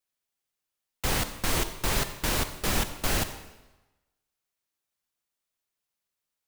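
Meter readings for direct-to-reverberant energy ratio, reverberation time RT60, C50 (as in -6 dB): 9.5 dB, 1.1 s, 10.5 dB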